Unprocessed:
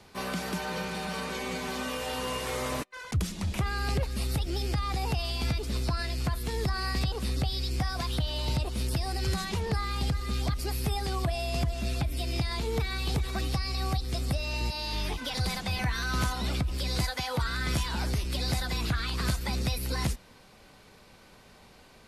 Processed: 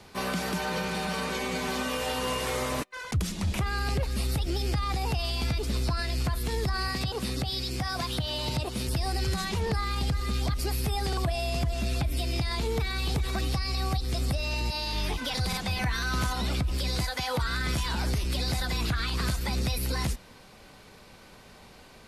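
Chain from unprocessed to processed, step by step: 6.88–8.88 HPF 80 Hz 24 dB/oct; limiter -24 dBFS, peak gain reduction 7.5 dB; stuck buffer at 11.08/15.48, samples 2048, times 1; gain +3.5 dB

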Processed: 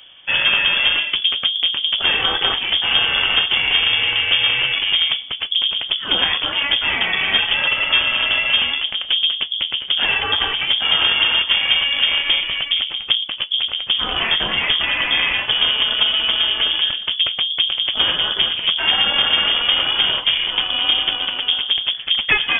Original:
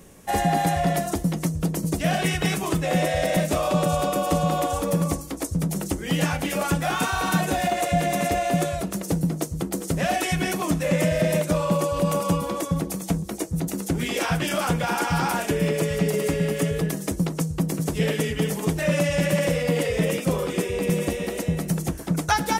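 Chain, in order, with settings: added harmonics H 4 -12 dB, 6 -10 dB, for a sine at -10 dBFS; inverted band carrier 3400 Hz; gain +4.5 dB

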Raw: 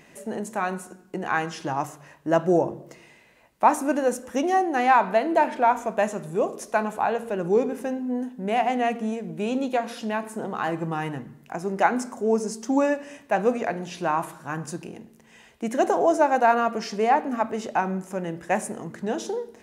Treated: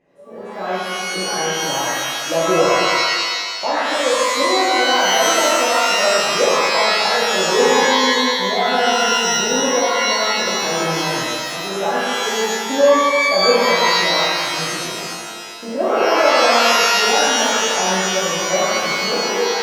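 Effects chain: LPF 1600 Hz 6 dB/oct; AGC gain up to 9 dB; 3.79–4.39 HPF 280 Hz 12 dB/oct; bell 530 Hz +11.5 dB 0.83 oct; shimmer reverb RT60 1.7 s, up +12 st, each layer -2 dB, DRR -9 dB; gain -17.5 dB

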